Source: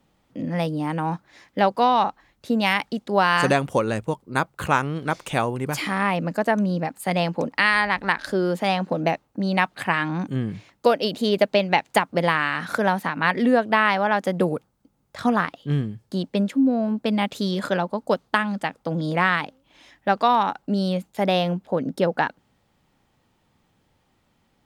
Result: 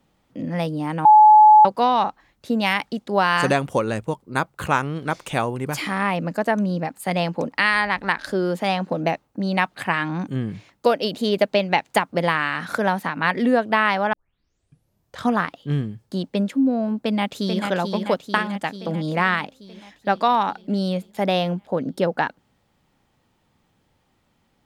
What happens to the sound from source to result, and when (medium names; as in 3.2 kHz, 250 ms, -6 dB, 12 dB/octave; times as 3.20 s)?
1.05–1.65 s: bleep 854 Hz -6.5 dBFS
14.13 s: tape start 1.13 s
17.02–17.63 s: echo throw 440 ms, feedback 65%, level -5 dB